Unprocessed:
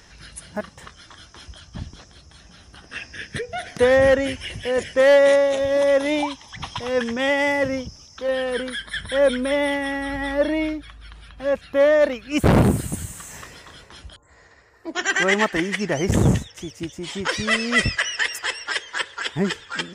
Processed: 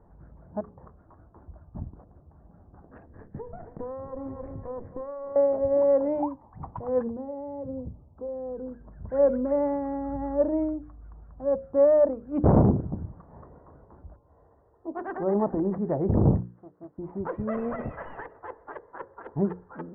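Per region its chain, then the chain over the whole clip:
3.06–5.36 s: comb filter that takes the minimum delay 0.49 ms + feedback delay 268 ms, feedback 32%, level -15.5 dB + compression 12:1, threshold -27 dBFS
7.07–9.07 s: compression, threshold -28 dBFS + low-pass 1 kHz + peaking EQ 76 Hz +4.5 dB 2.2 oct
15.17–15.78 s: low-pass 1.1 kHz + transient shaper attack 0 dB, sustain +11 dB
16.40–16.98 s: comb filter that takes the minimum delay 0.64 ms + high-pass 990 Hz 6 dB/octave + doubling 21 ms -13 dB
17.57–18.21 s: Butterworth band-stop 4.5 kHz, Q 5 + compression 3:1, threshold -24 dBFS + overdrive pedal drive 21 dB, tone 4.3 kHz, clips at -13 dBFS
whole clip: local Wiener filter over 15 samples; inverse Chebyshev low-pass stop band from 5.6 kHz, stop band 80 dB; hum notches 60/120/180/240/300/360/420/480/540 Hz; trim -2.5 dB

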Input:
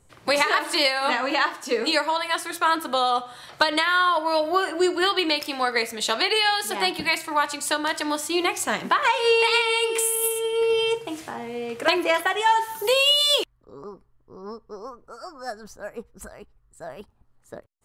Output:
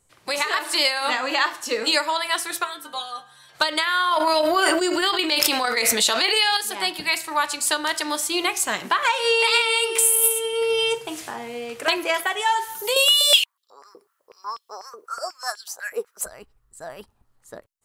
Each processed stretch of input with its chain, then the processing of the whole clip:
2.63–3.54 s: whistle 1.6 kHz -39 dBFS + inharmonic resonator 68 Hz, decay 0.39 s, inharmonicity 0.008
4.11–6.57 s: gate -21 dBFS, range -12 dB + level flattener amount 100%
12.96–16.26 s: treble shelf 4.9 kHz +9.5 dB + step-sequenced high-pass 8.1 Hz 410–3400 Hz
whole clip: bass shelf 450 Hz -5 dB; level rider gain up to 7.5 dB; treble shelf 3.9 kHz +6.5 dB; trim -5.5 dB

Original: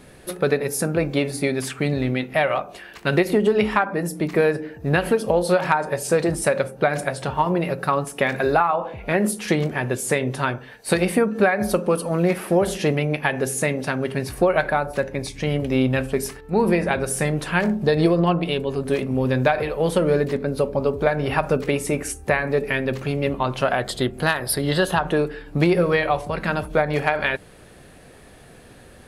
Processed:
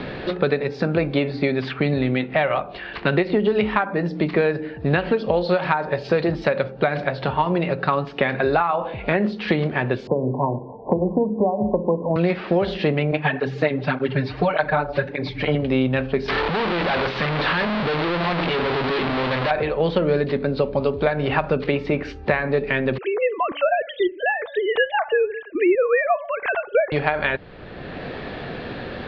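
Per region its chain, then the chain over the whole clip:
10.07–12.16 s: brick-wall FIR low-pass 1.1 kHz + hum notches 50/100/150/200/250/300/350/400/450 Hz + three bands compressed up and down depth 40%
13.11–15.55 s: comb 6.7 ms, depth 93% + cancelling through-zero flanger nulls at 1.7 Hz, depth 6.8 ms
16.28–19.51 s: one-bit comparator + low-pass 6.8 kHz 24 dB/octave + bass shelf 400 Hz -8 dB
22.98–26.92 s: formants replaced by sine waves + de-hum 288 Hz, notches 7
whole clip: steep low-pass 4.4 kHz 48 dB/octave; three bands compressed up and down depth 70%

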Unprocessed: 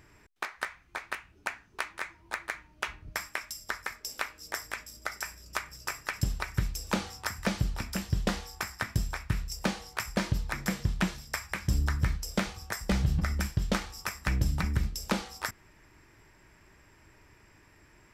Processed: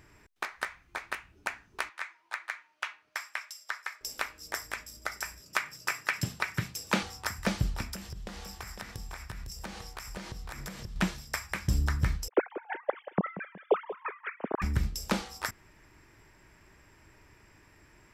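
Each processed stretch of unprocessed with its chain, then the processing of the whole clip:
1.89–4.01 s: high-pass 940 Hz + treble shelf 6.8 kHz -10 dB
5.40–7.03 s: dynamic bell 2.2 kHz, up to +6 dB, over -46 dBFS, Q 0.8 + high-pass 110 Hz 24 dB/octave
7.94–10.96 s: compression 10:1, threshold -37 dBFS + delay 505 ms -7 dB
12.28–14.62 s: formants replaced by sine waves + band-pass filter 440 Hz, Q 0.89 + feedback delay 184 ms, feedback 40%, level -14 dB
whole clip: none

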